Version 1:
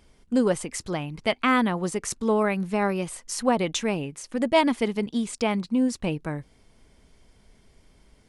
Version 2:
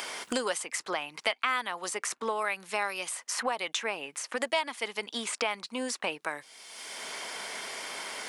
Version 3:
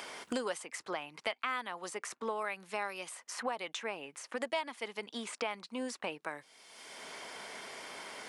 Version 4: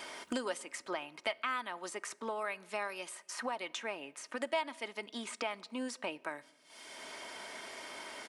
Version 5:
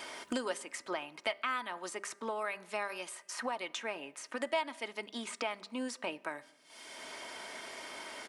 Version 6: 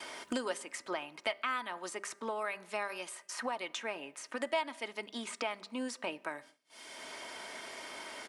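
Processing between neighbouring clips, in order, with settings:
high-pass filter 890 Hz 12 dB per octave; multiband upward and downward compressor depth 100%
high-pass filter 46 Hz; spectral tilt −1.5 dB per octave; level −6 dB
noise gate −56 dBFS, range −10 dB; comb filter 3.2 ms, depth 33%; on a send at −21 dB: convolution reverb RT60 1.2 s, pre-delay 3 ms; on the sum: level −1 dB
hum removal 199 Hz, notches 10; level +1 dB
downward expander −53 dBFS

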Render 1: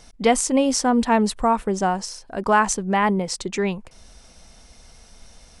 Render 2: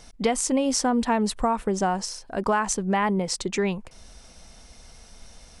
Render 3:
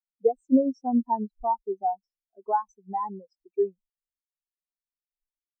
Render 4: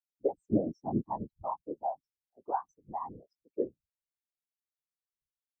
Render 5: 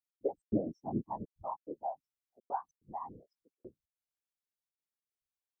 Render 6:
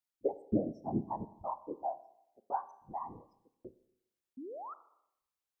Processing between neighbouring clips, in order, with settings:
downward compressor 6 to 1, threshold −19 dBFS, peak gain reduction 8 dB
parametric band 140 Hz −13 dB 0.8 octaves; every bin expanded away from the loudest bin 4 to 1; level −2.5 dB
random phases in short frames; level −8.5 dB
gate pattern "x.xx.xxxxxx" 144 BPM −60 dB; level −4 dB
sound drawn into the spectrogram rise, 0:04.37–0:04.74, 240–1,400 Hz −45 dBFS; four-comb reverb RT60 0.8 s, combs from 27 ms, DRR 14 dB; level +1 dB

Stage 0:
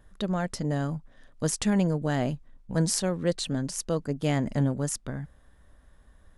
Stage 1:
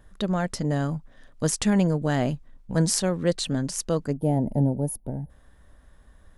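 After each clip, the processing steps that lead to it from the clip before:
gain on a spectral selection 0:04.16–0:05.30, 950–9,100 Hz −22 dB
level +3 dB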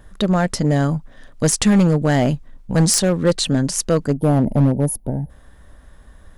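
hard clipping −17 dBFS, distortion −15 dB
level +8.5 dB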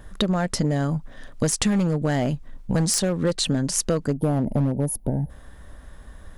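downward compressor, threshold −21 dBFS, peak gain reduction 10 dB
level +2 dB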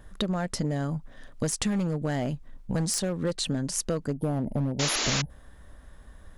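sound drawn into the spectrogram noise, 0:04.79–0:05.22, 220–7,300 Hz −22 dBFS
level −6 dB

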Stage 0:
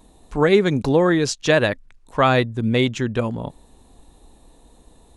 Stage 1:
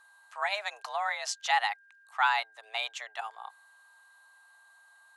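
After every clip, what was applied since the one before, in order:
frequency shifter +210 Hz
elliptic high-pass filter 830 Hz, stop band 70 dB
steady tone 1,600 Hz −50 dBFS
level −7.5 dB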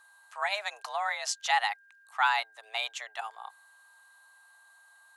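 high-shelf EQ 8,100 Hz +6.5 dB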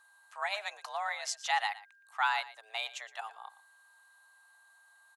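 single-tap delay 117 ms −17 dB
level −4 dB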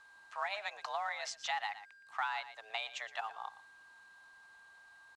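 downward compressor 4 to 1, threshold −39 dBFS, peak gain reduction 12.5 dB
log-companded quantiser 6 bits
high-frequency loss of the air 98 metres
level +4.5 dB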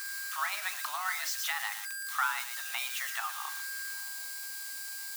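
spike at every zero crossing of −29.5 dBFS
high-pass filter sweep 1,300 Hz → 250 Hz, 0:03.90–0:04.47
rectangular room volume 190 cubic metres, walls furnished, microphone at 0.5 metres

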